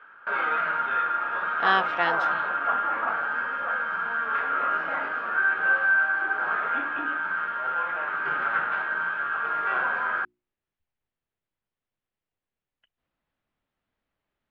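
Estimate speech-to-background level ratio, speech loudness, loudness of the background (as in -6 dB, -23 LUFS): -1.0 dB, -26.5 LUFS, -25.5 LUFS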